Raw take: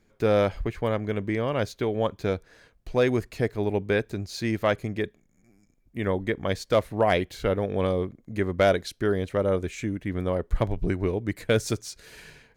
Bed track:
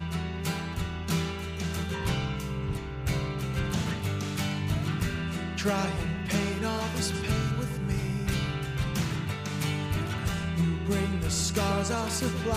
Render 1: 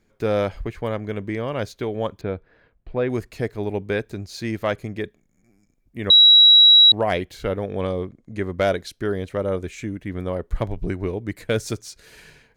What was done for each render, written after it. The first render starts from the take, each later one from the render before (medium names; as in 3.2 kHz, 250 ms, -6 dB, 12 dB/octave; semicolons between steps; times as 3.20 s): 2.21–3.10 s: distance through air 400 m; 6.10–6.92 s: bleep 3.88 kHz -7.5 dBFS; 7.81–8.41 s: low-pass 9.8 kHz 24 dB/octave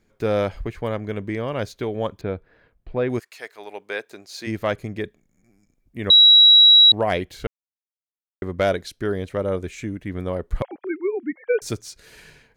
3.18–4.46 s: high-pass 1.3 kHz -> 380 Hz; 7.47–8.42 s: mute; 10.62–11.62 s: formants replaced by sine waves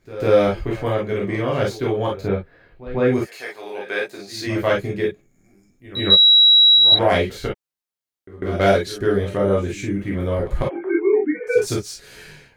pre-echo 148 ms -16 dB; gated-style reverb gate 80 ms flat, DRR -3.5 dB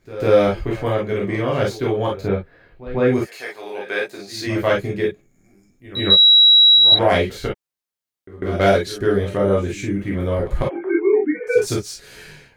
trim +1 dB; peak limiter -3 dBFS, peak gain reduction 2 dB